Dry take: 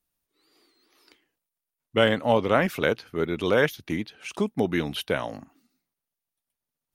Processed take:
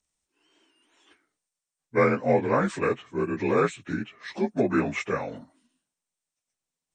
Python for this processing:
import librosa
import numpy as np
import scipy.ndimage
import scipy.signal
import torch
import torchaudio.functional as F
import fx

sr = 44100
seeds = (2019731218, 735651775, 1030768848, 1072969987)

y = fx.partial_stretch(x, sr, pct=86)
y = fx.peak_eq(y, sr, hz=770.0, db=7.0, octaves=2.0, at=(4.44, 5.09))
y = F.gain(torch.from_numpy(y), 1.0).numpy()